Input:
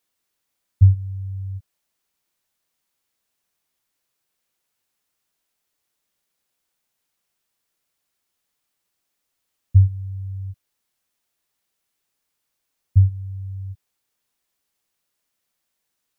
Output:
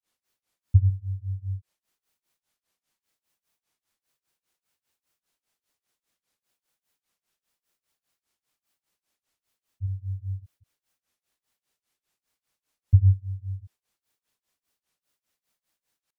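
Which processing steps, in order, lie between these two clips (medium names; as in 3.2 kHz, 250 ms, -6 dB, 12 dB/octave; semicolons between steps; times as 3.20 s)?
granulator 221 ms, grains 5 per s; trim +1.5 dB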